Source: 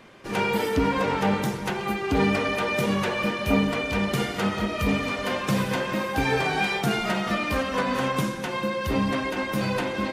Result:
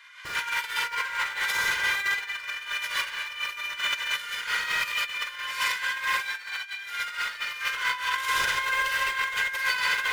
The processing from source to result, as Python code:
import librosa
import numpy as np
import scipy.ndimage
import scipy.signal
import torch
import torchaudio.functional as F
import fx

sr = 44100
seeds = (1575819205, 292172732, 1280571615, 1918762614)

p1 = scipy.signal.sosfilt(scipy.signal.butter(4, 1300.0, 'highpass', fs=sr, output='sos'), x)
p2 = fx.notch(p1, sr, hz=2600.0, q=13.0)
p3 = fx.schmitt(p2, sr, flips_db=-41.5)
p4 = p2 + (p3 * 10.0 ** (-6.5 / 20.0))
p5 = fx.peak_eq(p4, sr, hz=2100.0, db=6.5, octaves=2.4)
p6 = fx.rev_schroeder(p5, sr, rt60_s=0.47, comb_ms=31, drr_db=-6.5)
p7 = p6 * (1.0 - 0.59 / 2.0 + 0.59 / 2.0 * np.cos(2.0 * np.pi * 4.5 * (np.arange(len(p6)) / sr)))
p8 = p7 + 10.0 ** (-6.5 / 20.0) * np.pad(p7, (int(131 * sr / 1000.0), 0))[:len(p7)]
p9 = fx.over_compress(p8, sr, threshold_db=-23.0, ratio=-0.5)
p10 = p9 + 0.59 * np.pad(p9, (int(2.0 * sr / 1000.0), 0))[:len(p9)]
y = p10 * 10.0 ** (-7.0 / 20.0)